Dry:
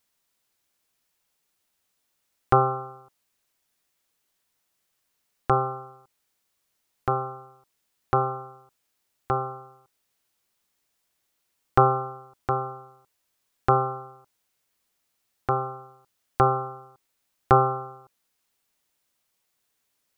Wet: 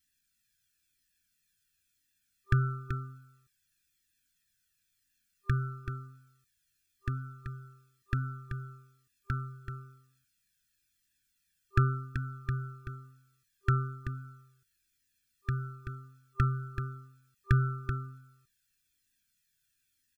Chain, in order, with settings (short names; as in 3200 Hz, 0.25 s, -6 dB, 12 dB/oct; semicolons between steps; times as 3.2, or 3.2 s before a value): comb 1.2 ms, depth 80%; on a send: echo 0.382 s -8 dB; on the sum: FFT band-reject 390–1200 Hz; cascading flanger falling 1 Hz